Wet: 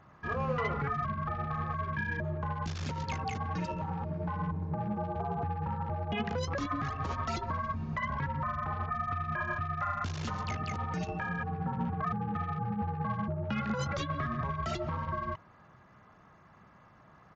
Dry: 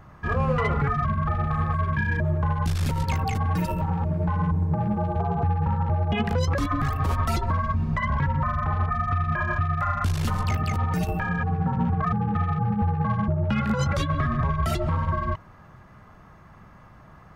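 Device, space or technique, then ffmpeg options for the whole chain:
Bluetooth headset: -af "highpass=f=170:p=1,aresample=16000,aresample=44100,volume=-6.5dB" -ar 16000 -c:a sbc -b:a 64k

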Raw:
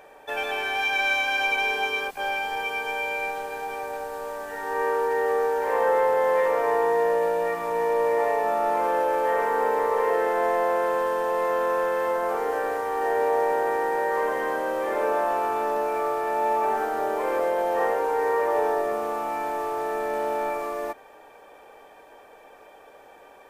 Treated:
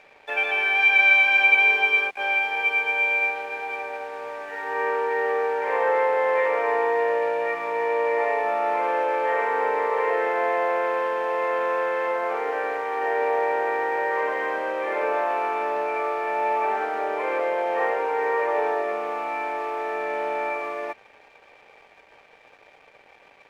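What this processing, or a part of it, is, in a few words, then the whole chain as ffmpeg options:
pocket radio on a weak battery: -af "highpass=310,lowpass=3.9k,aeval=exprs='sgn(val(0))*max(abs(val(0))-0.00211,0)':c=same,equalizer=f=2.3k:t=o:w=0.55:g=10"

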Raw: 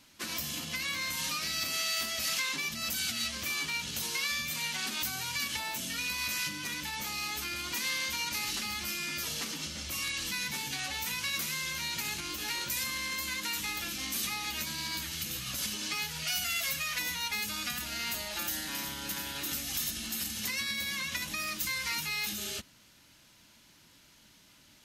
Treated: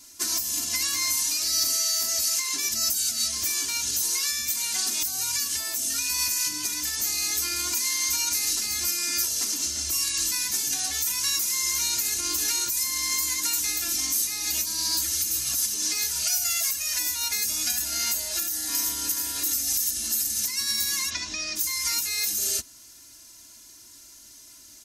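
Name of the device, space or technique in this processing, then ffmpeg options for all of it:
over-bright horn tweeter: -filter_complex "[0:a]asplit=3[a][b][c];[a]afade=t=out:st=21.09:d=0.02[d];[b]lowpass=f=5.3k:w=0.5412,lowpass=f=5.3k:w=1.3066,afade=t=in:st=21.09:d=0.02,afade=t=out:st=21.55:d=0.02[e];[c]afade=t=in:st=21.55:d=0.02[f];[d][e][f]amix=inputs=3:normalize=0,highshelf=f=4.4k:t=q:w=1.5:g=11.5,alimiter=limit=-17dB:level=0:latency=1:release=300,aecho=1:1:2.9:0.91"

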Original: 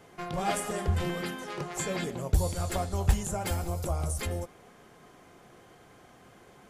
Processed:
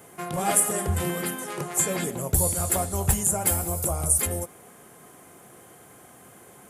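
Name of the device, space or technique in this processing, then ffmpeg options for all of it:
budget condenser microphone: -af "highpass=81,highshelf=f=7k:t=q:w=1.5:g=12.5,volume=4dB"

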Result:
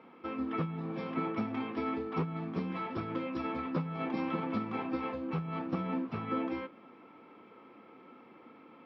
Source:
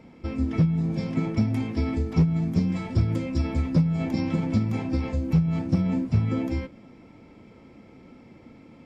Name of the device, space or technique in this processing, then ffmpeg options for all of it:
phone earpiece: -af "highpass=390,equalizer=f=610:t=q:w=4:g=-6,equalizer=f=1.2k:t=q:w=4:g=9,equalizer=f=2.1k:t=q:w=4:g=-5,lowpass=f=3.2k:w=0.5412,lowpass=f=3.2k:w=1.3066"

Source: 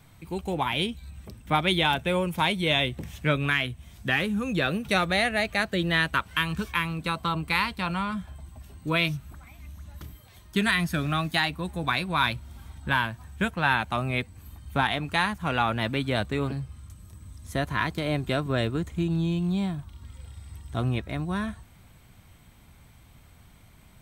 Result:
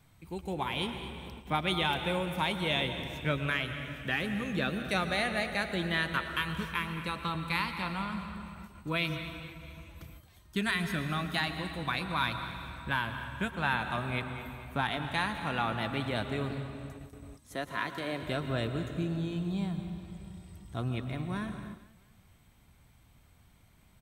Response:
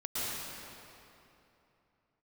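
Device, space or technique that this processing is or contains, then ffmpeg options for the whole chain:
keyed gated reverb: -filter_complex "[0:a]asettb=1/sr,asplit=3[a][b][c];[a]atrim=end=17.344[d];[b]atrim=start=17.34:end=18.23,asetpts=PTS-STARTPTS,afade=t=in:d=0.004:c=qsin,afade=t=out:st=0.886:d=0.004:c=qsin,highpass=240[e];[c]atrim=start=18.226[f];[d][e]acrossfade=d=0.004:c1=hsin:c2=qsin[g];[g][f]acrossfade=d=0.004:c1=qsin:c2=hsin,aecho=1:1:221|442|663|884:0.178|0.0711|0.0285|0.0114,asplit=3[h][i][j];[1:a]atrim=start_sample=2205[k];[i][k]afir=irnorm=-1:irlink=0[l];[j]apad=whole_len=1098047[m];[l][m]sidechaingate=range=-33dB:threshold=-45dB:ratio=16:detection=peak,volume=-12dB[n];[h][n]amix=inputs=2:normalize=0,volume=-8dB"

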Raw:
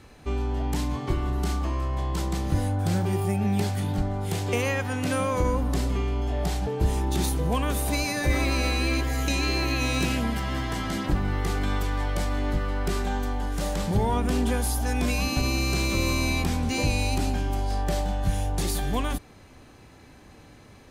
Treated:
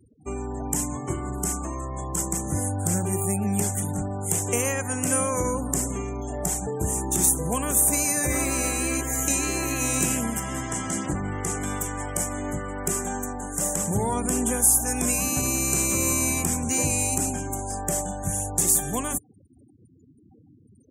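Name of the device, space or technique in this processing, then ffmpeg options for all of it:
budget condenser microphone: -filter_complex "[0:a]asettb=1/sr,asplit=3[a][b][c];[a]atrim=end=10.634[d];[b]atrim=start=10.63:end=11.61,asetpts=PTS-STARTPTS,afade=t=in:d=0.004:c=qsin,afade=t=out:st=0.976:d=0.004:c=qsin,lowpass=10k[e];[c]atrim=start=11.606[f];[d][e]acrossfade=d=0.004:c1=hsin:c2=qsin[g];[g][f]acrossfade=d=0.004:c1=qsin:c2=hsin,highpass=96,highshelf=f=5.7k:t=q:w=3:g=11,afftfilt=real='re*gte(hypot(re,im),0.0112)':imag='im*gte(hypot(re,im),0.0112)':win_size=1024:overlap=0.75"

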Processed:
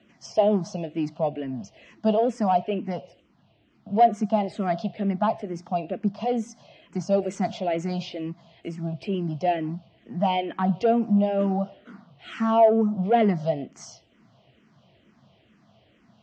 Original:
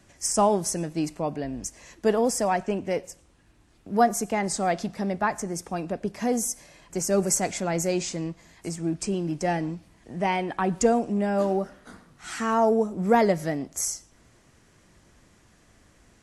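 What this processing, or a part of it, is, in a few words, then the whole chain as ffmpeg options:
barber-pole phaser into a guitar amplifier: -filter_complex "[0:a]asplit=2[a][b];[b]afreqshift=-2.2[c];[a][c]amix=inputs=2:normalize=1,asoftclip=type=tanh:threshold=-15.5dB,highpass=110,equalizer=f=130:t=q:w=4:g=9,equalizer=f=210:t=q:w=4:g=9,equalizer=f=670:t=q:w=4:g=9,equalizer=f=1.7k:t=q:w=4:g=-5,equalizer=f=3k:t=q:w=4:g=8,lowpass=f=4.4k:w=0.5412,lowpass=f=4.4k:w=1.3066"

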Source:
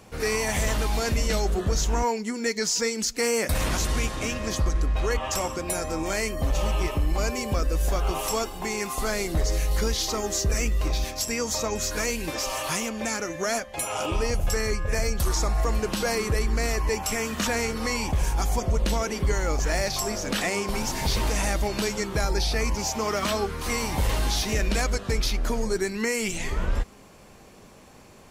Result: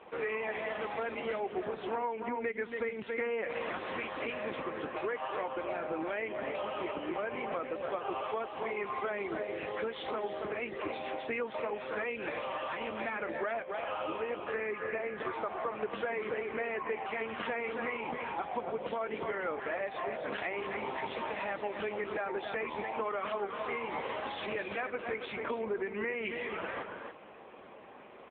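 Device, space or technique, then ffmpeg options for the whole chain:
voicemail: -filter_complex "[0:a]equalizer=f=73:w=0.55:g=-3.5,asettb=1/sr,asplit=3[a][b][c];[a]atrim=end=12.894[d];[b]atrim=start=12.89:end=13.53,asetpts=PTS-STARTPTS,afade=t=in:d=0.004:c=qsin,afade=t=out:st=0.636:d=0.004:c=qsin,bandreject=f=60:t=h:w=6,bandreject=f=120:t=h:w=6,bandreject=f=180:t=h:w=6,bandreject=f=240:t=h:w=6,bandreject=f=300:t=h:w=6,bandreject=f=360:t=h:w=6,bandreject=f=420:t=h:w=6,bandreject=f=480:t=h:w=6,bandreject=f=540:t=h:w=6,bandreject=f=600:t=h:w=6[e];[c]atrim=start=13.526[f];[d][e]acrossfade=d=0.004:c1=hsin:c2=qsin[g];[g][f]acrossfade=d=0.004:c1=qsin:c2=hsin,highpass=340,lowpass=2.7k,aecho=1:1:277:0.376,acompressor=threshold=-35dB:ratio=6,volume=4dB" -ar 8000 -c:a libopencore_amrnb -b:a 6700

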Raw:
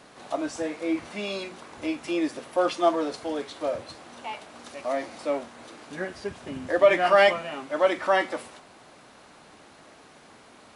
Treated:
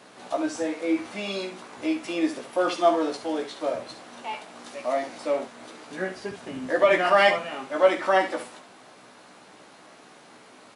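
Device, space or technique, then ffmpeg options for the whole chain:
slapback doubling: -filter_complex "[0:a]asplit=3[a][b][c];[b]adelay=16,volume=-5dB[d];[c]adelay=70,volume=-10dB[e];[a][d][e]amix=inputs=3:normalize=0,highpass=140"

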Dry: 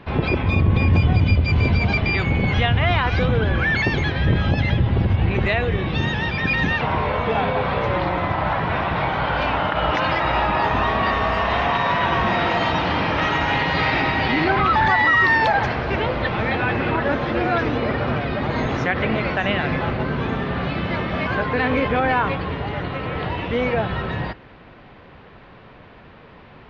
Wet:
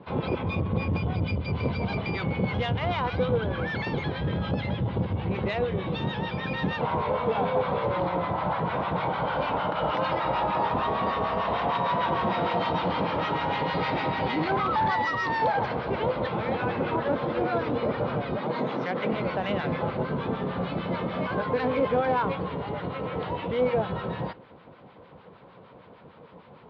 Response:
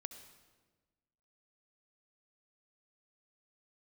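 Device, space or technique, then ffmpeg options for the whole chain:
guitar amplifier with harmonic tremolo: -filter_complex "[0:a]acrossover=split=970[a][b];[a]aeval=exprs='val(0)*(1-0.7/2+0.7/2*cos(2*PI*6.6*n/s))':c=same[c];[b]aeval=exprs='val(0)*(1-0.7/2-0.7/2*cos(2*PI*6.6*n/s))':c=same[d];[c][d]amix=inputs=2:normalize=0,asoftclip=type=tanh:threshold=-15.5dB,highpass=100,equalizer=f=180:t=q:w=4:g=4,equalizer=f=500:t=q:w=4:g=7,equalizer=f=950:t=q:w=4:g=4,equalizer=f=1.8k:t=q:w=4:g=-7,equalizer=f=2.6k:t=q:w=4:g=-5,lowpass=f=4.5k:w=0.5412,lowpass=f=4.5k:w=1.3066,asettb=1/sr,asplit=3[e][f][g];[e]atrim=end=18.384[h];[f]atrim=start=18.38:end=19.13,asetpts=PTS-STARTPTS,afade=t=in:d=0.004:c=qsin,afade=t=out:st=0.746:d=0.004:c=qsin,highpass=f=150:w=0.5412,highpass=f=150:w=1.3066[i];[g]atrim=start=19.126[j];[h][i]acrossfade=d=0.004:c1=hsin:c2=qsin[k];[k][j]acrossfade=d=0.004:c1=qsin:c2=hsin,volume=-3dB"

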